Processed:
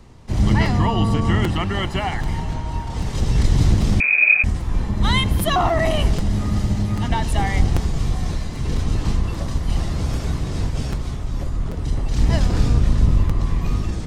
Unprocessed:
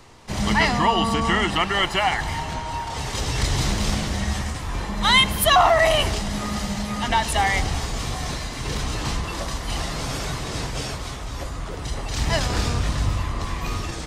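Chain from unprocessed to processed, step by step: octave divider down 1 oct, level +2 dB; bass shelf 420 Hz +11.5 dB; 4.00–4.44 s: frequency inversion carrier 2.5 kHz; crackling interface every 0.79 s, samples 256, repeat, from 0.65 s; trim -6.5 dB

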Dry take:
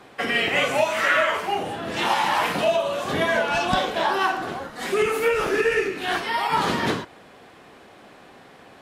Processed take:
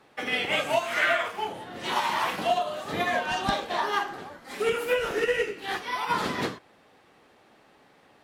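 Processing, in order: tape speed +7%; upward expansion 1.5:1, over -32 dBFS; trim -3 dB

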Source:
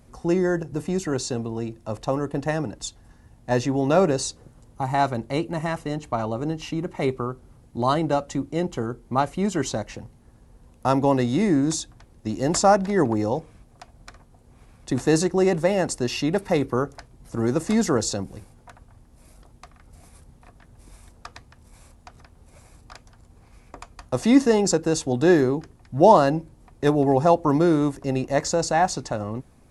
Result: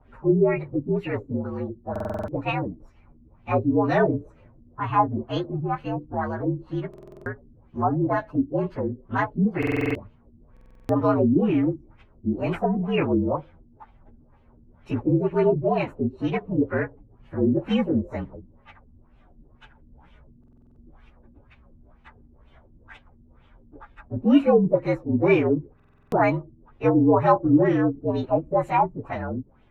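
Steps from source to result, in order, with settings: frequency axis rescaled in octaves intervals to 117%; LFO low-pass sine 2.1 Hz 240–2900 Hz; buffer glitch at 1.91/6.89/9.58/10.52/20.39/25.75 s, samples 2048, times 7

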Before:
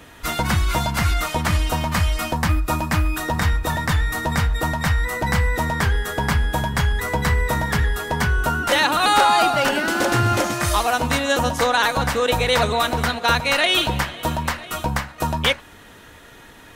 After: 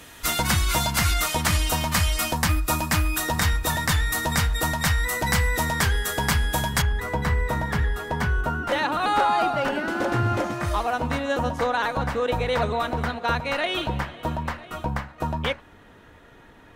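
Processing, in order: peaking EQ 12 kHz +9.5 dB 2.8 oct, from 6.82 s -7.5 dB, from 8.41 s -14 dB; trim -3.5 dB

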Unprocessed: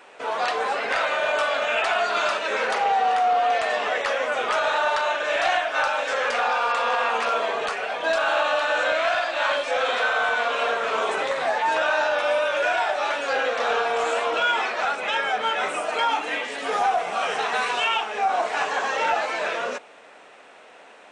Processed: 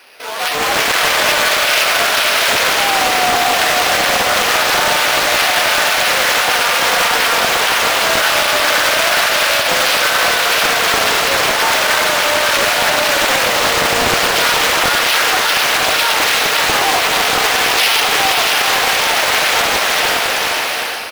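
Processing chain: frequency weighting D; sample-rate reducer 7.4 kHz, jitter 0%; high-pass 75 Hz 24 dB/octave; on a send: echo that smears into a reverb 531 ms, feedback 70%, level -4 dB; on the sum: peak limiter -12 dBFS, peak gain reduction 10 dB; level rider gain up to 10 dB; frequency-shifting echo 325 ms, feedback 55%, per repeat -76 Hz, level -16 dB; loudspeaker Doppler distortion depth 0.61 ms; trim -1 dB

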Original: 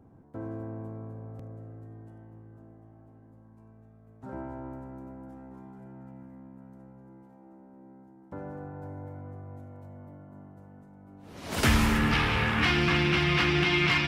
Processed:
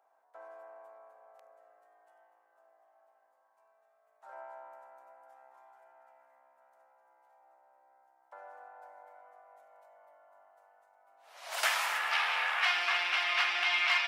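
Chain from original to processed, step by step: Chebyshev high-pass 650 Hz, order 4; trim -2 dB

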